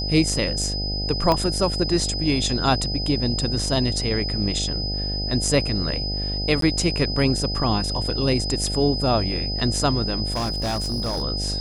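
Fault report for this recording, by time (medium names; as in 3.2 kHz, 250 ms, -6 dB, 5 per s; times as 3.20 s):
buzz 50 Hz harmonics 16 -28 dBFS
whine 5 kHz -27 dBFS
1.32 s: pop -8 dBFS
6.61–6.62 s: dropout 13 ms
10.31–11.23 s: clipped -21 dBFS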